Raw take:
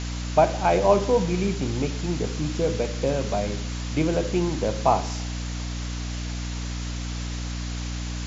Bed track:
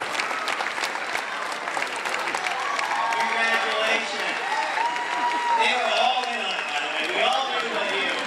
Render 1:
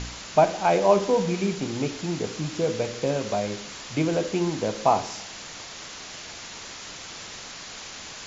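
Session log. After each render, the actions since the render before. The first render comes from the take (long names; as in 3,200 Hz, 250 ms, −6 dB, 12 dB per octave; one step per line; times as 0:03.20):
hum removal 60 Hz, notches 9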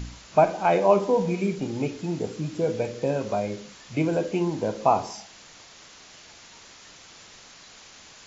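noise reduction from a noise print 9 dB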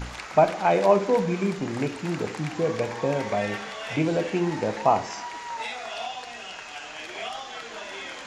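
mix in bed track −12.5 dB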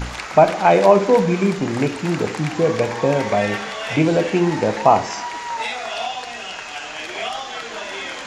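level +7.5 dB
brickwall limiter −1 dBFS, peak gain reduction 2 dB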